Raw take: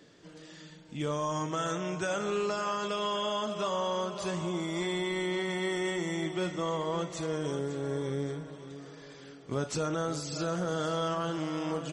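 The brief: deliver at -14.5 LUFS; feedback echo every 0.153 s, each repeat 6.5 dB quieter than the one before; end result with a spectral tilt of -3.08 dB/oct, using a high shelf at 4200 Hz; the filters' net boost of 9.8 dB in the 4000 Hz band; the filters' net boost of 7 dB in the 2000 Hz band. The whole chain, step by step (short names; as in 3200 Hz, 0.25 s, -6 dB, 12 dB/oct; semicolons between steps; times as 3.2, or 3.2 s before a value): bell 2000 Hz +5.5 dB; bell 4000 Hz +7.5 dB; high shelf 4200 Hz +6 dB; feedback echo 0.153 s, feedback 47%, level -6.5 dB; gain +13.5 dB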